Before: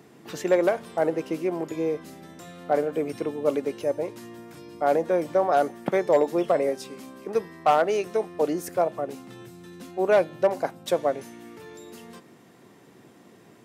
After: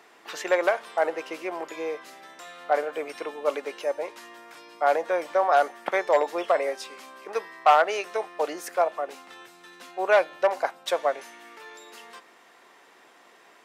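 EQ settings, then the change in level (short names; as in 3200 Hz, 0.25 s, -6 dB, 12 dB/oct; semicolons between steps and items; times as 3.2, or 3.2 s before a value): HPF 880 Hz 12 dB/oct; LPF 3500 Hz 6 dB/oct; +7.0 dB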